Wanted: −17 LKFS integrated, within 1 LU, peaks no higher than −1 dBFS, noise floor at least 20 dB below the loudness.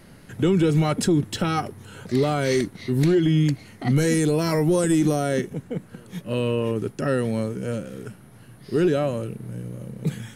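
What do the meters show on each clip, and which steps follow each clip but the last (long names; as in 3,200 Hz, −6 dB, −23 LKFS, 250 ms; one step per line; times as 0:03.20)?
integrated loudness −23.0 LKFS; sample peak −12.0 dBFS; target loudness −17.0 LKFS
→ level +6 dB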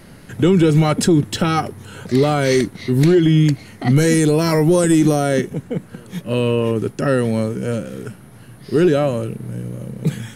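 integrated loudness −17.0 LKFS; sample peak −6.0 dBFS; background noise floor −42 dBFS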